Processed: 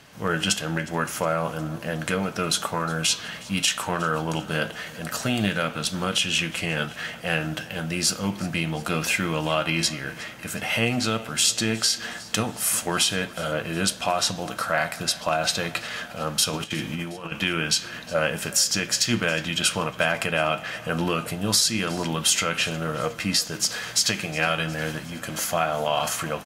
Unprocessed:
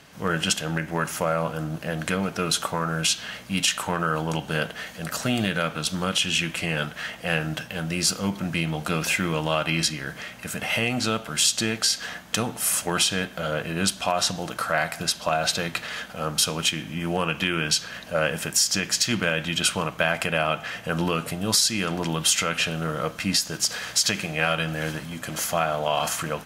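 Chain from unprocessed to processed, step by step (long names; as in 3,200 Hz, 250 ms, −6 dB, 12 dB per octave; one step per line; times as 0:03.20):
0:16.53–0:17.32: compressor whose output falls as the input rises −30 dBFS, ratio −0.5
flanger 1 Hz, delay 8.1 ms, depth 1.8 ms, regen +75%
on a send: repeating echo 362 ms, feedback 58%, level −21 dB
on the sum: level +4.5 dB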